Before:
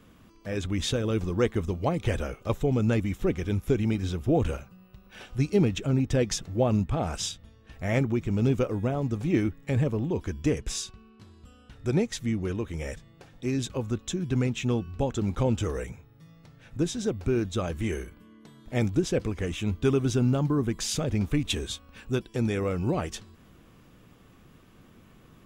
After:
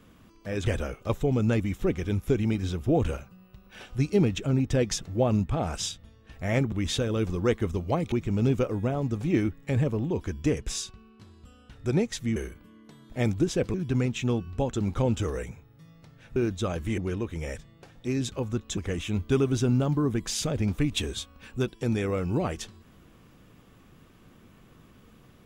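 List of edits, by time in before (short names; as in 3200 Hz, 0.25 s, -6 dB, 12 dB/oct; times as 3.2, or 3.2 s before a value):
0.66–2.06 move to 8.12
12.36–14.15 swap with 17.92–19.3
16.77–17.3 cut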